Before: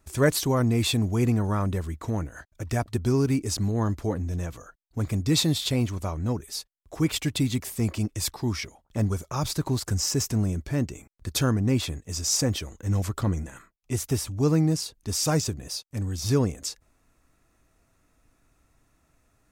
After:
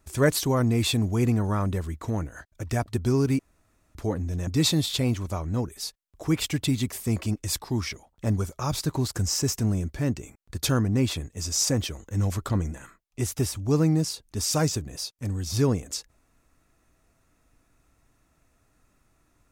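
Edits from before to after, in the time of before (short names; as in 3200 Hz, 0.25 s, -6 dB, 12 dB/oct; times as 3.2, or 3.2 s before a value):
3.39–3.95 room tone
4.47–5.19 cut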